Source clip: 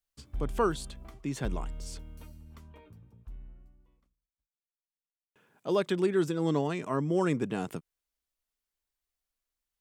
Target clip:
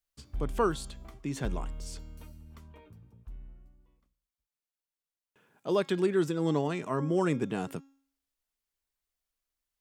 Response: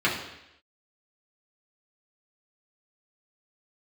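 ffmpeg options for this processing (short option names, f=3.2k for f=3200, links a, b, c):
-af "bandreject=f=273.1:t=h:w=4,bandreject=f=546.2:t=h:w=4,bandreject=f=819.3:t=h:w=4,bandreject=f=1.0924k:t=h:w=4,bandreject=f=1.3655k:t=h:w=4,bandreject=f=1.6386k:t=h:w=4,bandreject=f=1.9117k:t=h:w=4,bandreject=f=2.1848k:t=h:w=4,bandreject=f=2.4579k:t=h:w=4,bandreject=f=2.731k:t=h:w=4,bandreject=f=3.0041k:t=h:w=4,bandreject=f=3.2772k:t=h:w=4,bandreject=f=3.5503k:t=h:w=4,bandreject=f=3.8234k:t=h:w=4,bandreject=f=4.0965k:t=h:w=4,bandreject=f=4.3696k:t=h:w=4,bandreject=f=4.6427k:t=h:w=4,bandreject=f=4.9158k:t=h:w=4,bandreject=f=5.1889k:t=h:w=4,bandreject=f=5.462k:t=h:w=4,bandreject=f=5.7351k:t=h:w=4,bandreject=f=6.0082k:t=h:w=4,bandreject=f=6.2813k:t=h:w=4,bandreject=f=6.5544k:t=h:w=4,bandreject=f=6.8275k:t=h:w=4,bandreject=f=7.1006k:t=h:w=4,bandreject=f=7.3737k:t=h:w=4"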